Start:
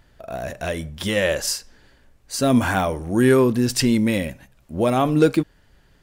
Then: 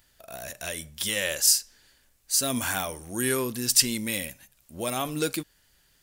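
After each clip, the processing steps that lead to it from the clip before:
first-order pre-emphasis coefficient 0.9
level +6 dB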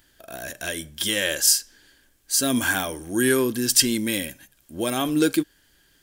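hollow resonant body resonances 310/1,600/3,200 Hz, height 10 dB, ringing for 25 ms
level +2 dB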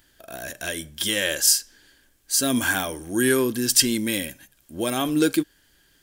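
no processing that can be heard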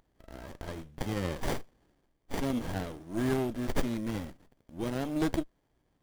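windowed peak hold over 33 samples
level −8.5 dB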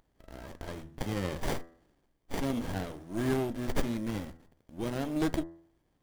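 hum removal 83.21 Hz, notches 24

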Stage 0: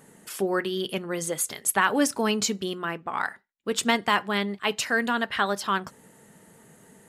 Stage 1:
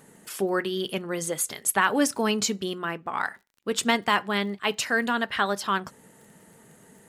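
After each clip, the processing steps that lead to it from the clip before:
surface crackle 26 per second −45 dBFS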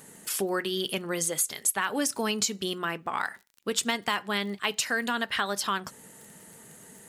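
high-shelf EQ 2,700 Hz +8.5 dB
downward compressor 3 to 1, threshold −26 dBFS, peak gain reduction 11 dB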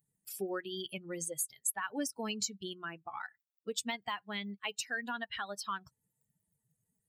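spectral dynamics exaggerated over time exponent 2
level −5.5 dB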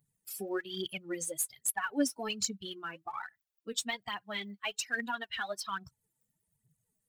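phase shifter 1.2 Hz, delay 4.2 ms, feedback 62%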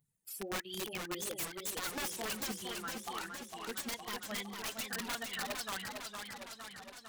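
wrap-around overflow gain 29.5 dB
feedback echo with a swinging delay time 458 ms, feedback 67%, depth 146 cents, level −5 dB
level −3 dB

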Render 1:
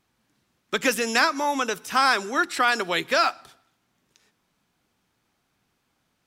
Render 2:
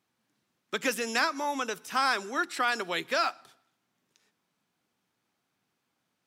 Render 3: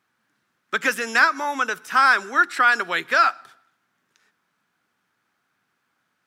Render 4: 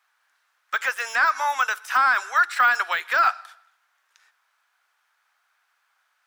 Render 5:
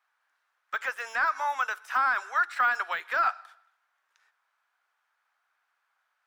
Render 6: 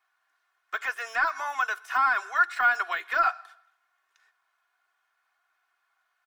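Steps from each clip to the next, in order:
high-pass filter 130 Hz 12 dB per octave; level −6.5 dB
parametric band 1,500 Hz +11.5 dB 1 octave; level +2 dB
high-pass filter 710 Hz 24 dB per octave; de-essing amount 85%; level +3.5 dB
high-shelf EQ 2,400 Hz −9 dB; level −4 dB
comb filter 2.8 ms, depth 70%

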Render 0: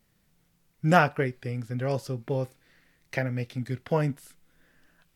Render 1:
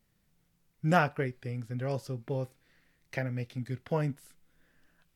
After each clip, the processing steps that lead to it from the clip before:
low-shelf EQ 150 Hz +3 dB
level −5.5 dB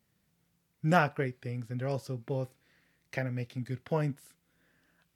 high-pass filter 70 Hz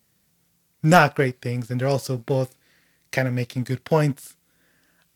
bass and treble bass −2 dB, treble +7 dB
leveller curve on the samples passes 1
level +8 dB

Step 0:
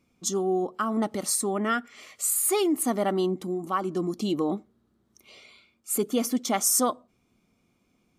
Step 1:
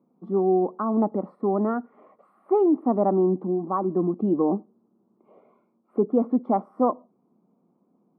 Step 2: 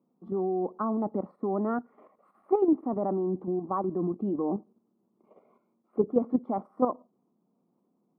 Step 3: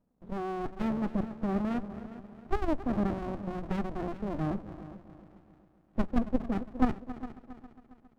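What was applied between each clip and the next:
elliptic band-pass filter 170–1,000 Hz, stop band 70 dB; level +5 dB
output level in coarse steps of 9 dB; level −1 dB
spectral magnitudes quantised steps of 15 dB; echo machine with several playback heads 136 ms, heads second and third, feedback 45%, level −15 dB; windowed peak hold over 65 samples

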